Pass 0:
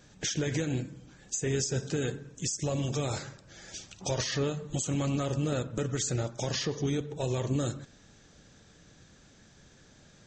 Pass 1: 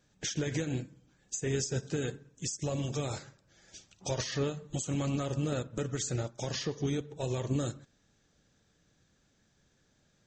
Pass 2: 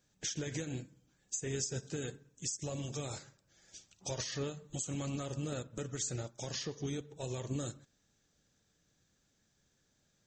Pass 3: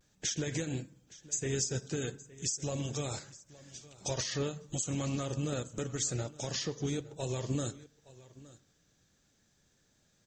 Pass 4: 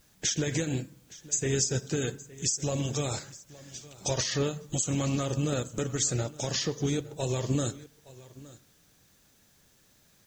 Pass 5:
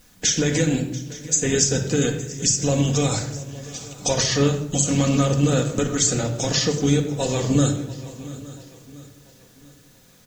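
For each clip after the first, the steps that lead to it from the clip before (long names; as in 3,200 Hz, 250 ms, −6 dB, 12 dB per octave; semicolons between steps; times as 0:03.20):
expander for the loud parts 1.5 to 1, over −50 dBFS; level −1 dB
high-shelf EQ 5,800 Hz +9.5 dB; level −6.5 dB
pitch vibrato 0.33 Hz 23 cents; single-tap delay 867 ms −20 dB; level +4 dB
bit-depth reduction 12 bits, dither triangular; level +5.5 dB
repeating echo 687 ms, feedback 45%, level −19 dB; rectangular room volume 2,300 cubic metres, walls furnished, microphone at 1.9 metres; level +7.5 dB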